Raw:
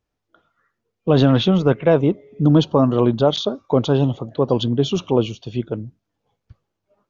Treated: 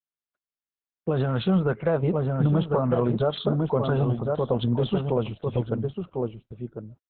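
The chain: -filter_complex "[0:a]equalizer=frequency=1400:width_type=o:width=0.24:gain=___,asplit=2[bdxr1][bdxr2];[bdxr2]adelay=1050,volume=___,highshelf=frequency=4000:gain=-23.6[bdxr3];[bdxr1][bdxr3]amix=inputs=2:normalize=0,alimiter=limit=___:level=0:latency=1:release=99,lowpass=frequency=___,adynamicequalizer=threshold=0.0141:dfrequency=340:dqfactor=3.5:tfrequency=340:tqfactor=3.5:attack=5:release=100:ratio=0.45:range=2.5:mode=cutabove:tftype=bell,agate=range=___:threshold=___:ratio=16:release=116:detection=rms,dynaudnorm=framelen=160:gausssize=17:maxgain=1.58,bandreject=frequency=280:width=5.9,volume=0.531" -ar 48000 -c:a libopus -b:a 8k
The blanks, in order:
6, 0.447, 0.376, 2400, 0.00126, 0.00631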